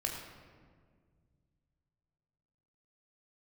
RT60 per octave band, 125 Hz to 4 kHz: 3.3, 2.6, 2.1, 1.6, 1.4, 1.0 seconds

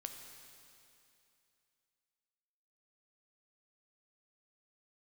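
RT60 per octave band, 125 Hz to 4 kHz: 2.7, 2.7, 2.7, 2.7, 2.7, 2.7 seconds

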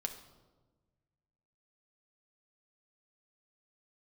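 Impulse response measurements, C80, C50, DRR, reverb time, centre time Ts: 12.0 dB, 10.0 dB, 4.0 dB, 1.3 s, 14 ms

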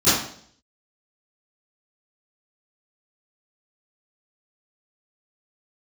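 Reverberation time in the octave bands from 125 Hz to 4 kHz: 0.65, 0.65, 0.60, 0.55, 0.50, 0.60 seconds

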